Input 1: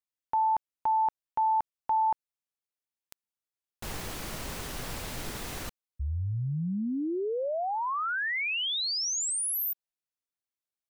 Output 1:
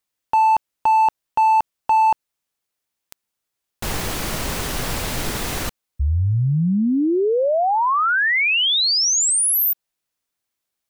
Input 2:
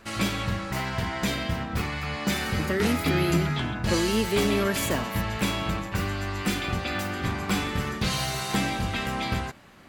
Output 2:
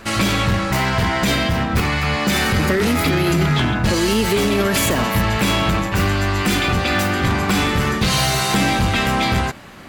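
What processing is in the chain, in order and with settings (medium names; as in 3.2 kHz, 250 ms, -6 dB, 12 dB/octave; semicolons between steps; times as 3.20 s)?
in parallel at -8 dB: wavefolder -27.5 dBFS; on the sum: loudness maximiser +17 dB; trim -7.5 dB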